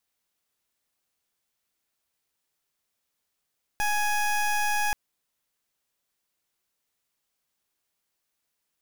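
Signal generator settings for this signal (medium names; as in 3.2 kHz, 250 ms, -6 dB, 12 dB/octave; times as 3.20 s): pulse 834 Hz, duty 21% -25 dBFS 1.13 s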